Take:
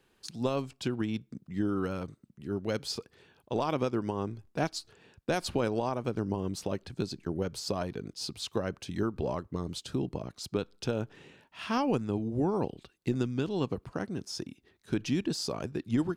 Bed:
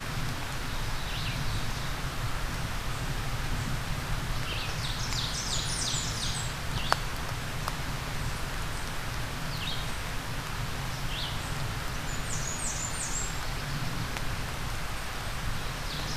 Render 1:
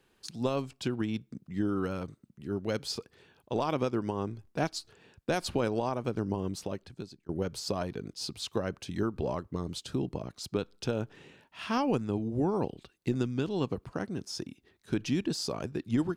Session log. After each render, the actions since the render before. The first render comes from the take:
0:06.45–0:07.29: fade out linear, to −23 dB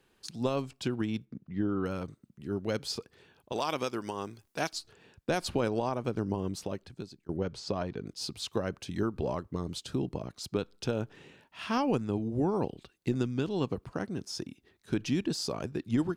0:01.25–0:01.86: high-frequency loss of the air 230 metres
0:03.52–0:04.73: spectral tilt +3 dB per octave
0:07.36–0:08.06: high-frequency loss of the air 95 metres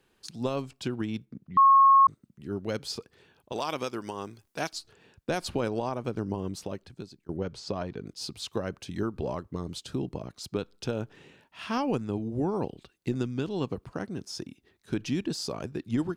0:01.57–0:02.07: beep over 1,090 Hz −14 dBFS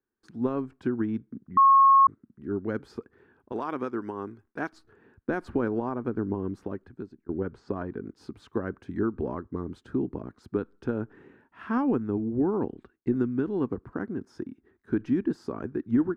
noise gate with hold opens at −56 dBFS
drawn EQ curve 100 Hz 0 dB, 160 Hz −4 dB, 240 Hz +6 dB, 400 Hz +4 dB, 580 Hz −5 dB, 1,000 Hz 0 dB, 1,600 Hz +3 dB, 2,700 Hz −15 dB, 4,600 Hz −22 dB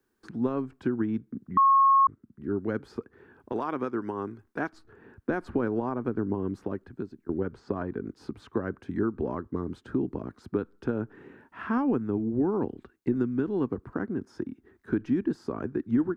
multiband upward and downward compressor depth 40%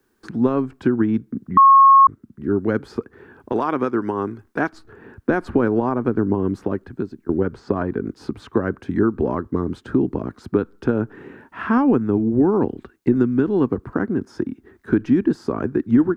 level +9.5 dB

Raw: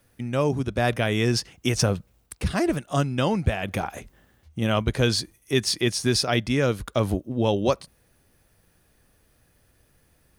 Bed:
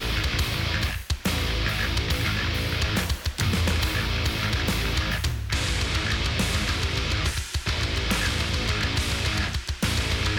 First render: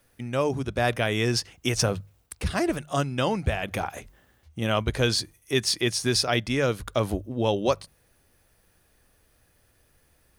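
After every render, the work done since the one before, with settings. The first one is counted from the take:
parametric band 190 Hz −4.5 dB 1.7 octaves
mains-hum notches 50/100/150 Hz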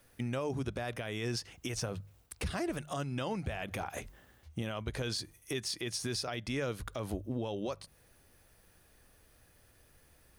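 downward compressor 4 to 1, threshold −31 dBFS, peak gain reduction 12 dB
brickwall limiter −26 dBFS, peak gain reduction 8.5 dB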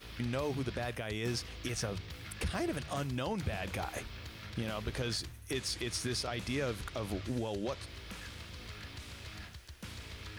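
mix in bed −21.5 dB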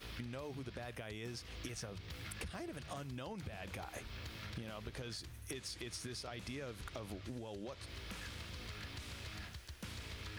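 downward compressor 10 to 1, threshold −42 dBFS, peak gain reduction 12.5 dB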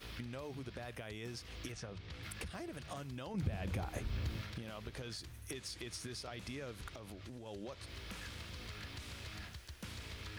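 0:01.72–0:02.23: high-frequency loss of the air 70 metres
0:03.34–0:04.42: low-shelf EQ 410 Hz +11.5 dB
0:06.93–0:07.46: downward compressor 3 to 1, threshold −46 dBFS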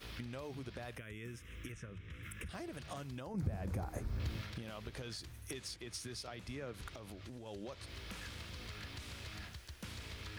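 0:00.98–0:02.49: phaser with its sweep stopped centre 1,900 Hz, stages 4
0:03.20–0:04.20: parametric band 3,100 Hz −13 dB 1.2 octaves
0:05.76–0:06.74: multiband upward and downward expander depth 100%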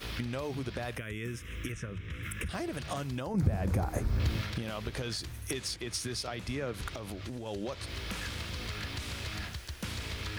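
level +9.5 dB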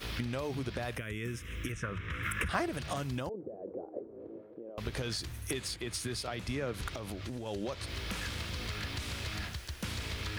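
0:01.83–0:02.66: parametric band 1,200 Hz +11 dB 1.7 octaves
0:03.29–0:04.78: flat-topped band-pass 430 Hz, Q 1.8
0:05.50–0:06.32: parametric band 5,700 Hz −6.5 dB 0.32 octaves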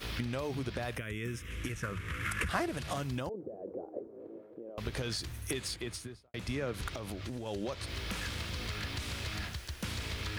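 0:01.50–0:02.97: variable-slope delta modulation 64 kbit/s
0:04.08–0:04.53: high-pass filter 190 Hz 6 dB per octave
0:05.79–0:06.34: fade out and dull

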